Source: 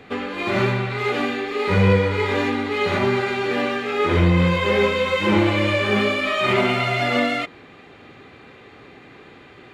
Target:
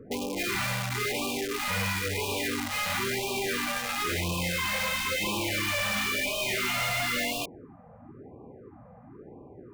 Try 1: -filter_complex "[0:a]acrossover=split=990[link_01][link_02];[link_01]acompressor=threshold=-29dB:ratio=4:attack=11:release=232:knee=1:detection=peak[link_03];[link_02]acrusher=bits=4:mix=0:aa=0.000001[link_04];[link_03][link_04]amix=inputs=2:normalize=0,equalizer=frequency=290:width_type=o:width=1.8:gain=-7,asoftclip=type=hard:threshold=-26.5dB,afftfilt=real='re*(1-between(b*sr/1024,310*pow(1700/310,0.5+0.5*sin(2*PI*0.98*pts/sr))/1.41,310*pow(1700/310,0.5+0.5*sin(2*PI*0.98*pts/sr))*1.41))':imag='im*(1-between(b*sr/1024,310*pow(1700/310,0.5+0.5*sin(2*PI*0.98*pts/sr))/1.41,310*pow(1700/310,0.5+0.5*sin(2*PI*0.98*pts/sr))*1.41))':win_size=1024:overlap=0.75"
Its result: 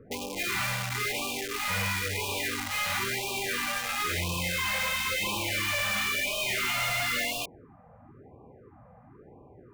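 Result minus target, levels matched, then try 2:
250 Hz band −5.5 dB
-filter_complex "[0:a]acrossover=split=990[link_01][link_02];[link_01]acompressor=threshold=-29dB:ratio=4:attack=11:release=232:knee=1:detection=peak[link_03];[link_02]acrusher=bits=4:mix=0:aa=0.000001[link_04];[link_03][link_04]amix=inputs=2:normalize=0,asoftclip=type=hard:threshold=-26.5dB,afftfilt=real='re*(1-between(b*sr/1024,310*pow(1700/310,0.5+0.5*sin(2*PI*0.98*pts/sr))/1.41,310*pow(1700/310,0.5+0.5*sin(2*PI*0.98*pts/sr))*1.41))':imag='im*(1-between(b*sr/1024,310*pow(1700/310,0.5+0.5*sin(2*PI*0.98*pts/sr))/1.41,310*pow(1700/310,0.5+0.5*sin(2*PI*0.98*pts/sr))*1.41))':win_size=1024:overlap=0.75"

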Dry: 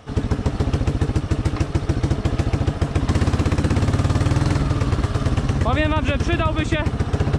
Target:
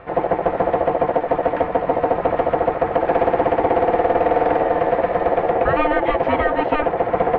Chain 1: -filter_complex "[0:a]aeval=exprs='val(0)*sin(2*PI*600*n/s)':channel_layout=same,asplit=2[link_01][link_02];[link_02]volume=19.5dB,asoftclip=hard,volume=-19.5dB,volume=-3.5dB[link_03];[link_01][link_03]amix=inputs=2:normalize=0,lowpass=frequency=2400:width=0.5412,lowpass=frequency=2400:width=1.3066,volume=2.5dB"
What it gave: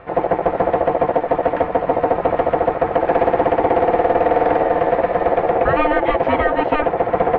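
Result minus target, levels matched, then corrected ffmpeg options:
gain into a clipping stage and back: distortion −5 dB
-filter_complex "[0:a]aeval=exprs='val(0)*sin(2*PI*600*n/s)':channel_layout=same,asplit=2[link_01][link_02];[link_02]volume=27.5dB,asoftclip=hard,volume=-27.5dB,volume=-3.5dB[link_03];[link_01][link_03]amix=inputs=2:normalize=0,lowpass=frequency=2400:width=0.5412,lowpass=frequency=2400:width=1.3066,volume=2.5dB"

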